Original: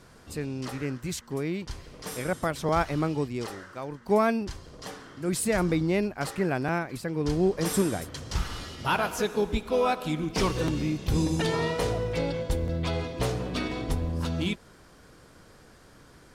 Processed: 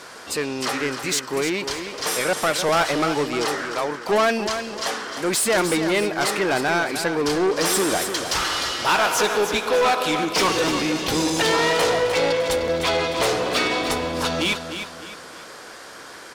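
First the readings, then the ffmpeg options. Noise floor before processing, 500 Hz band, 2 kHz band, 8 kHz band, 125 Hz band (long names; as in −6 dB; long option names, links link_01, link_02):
−54 dBFS, +7.5 dB, +12.0 dB, +12.5 dB, −4.5 dB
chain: -filter_complex "[0:a]asplit=2[link_01][link_02];[link_02]highpass=frequency=720:poles=1,volume=24dB,asoftclip=type=tanh:threshold=-11dB[link_03];[link_01][link_03]amix=inputs=2:normalize=0,lowpass=frequency=4200:poles=1,volume=-6dB,bass=frequency=250:gain=-8,treble=frequency=4000:gain=4,aecho=1:1:303|606|909|1212:0.355|0.131|0.0486|0.018"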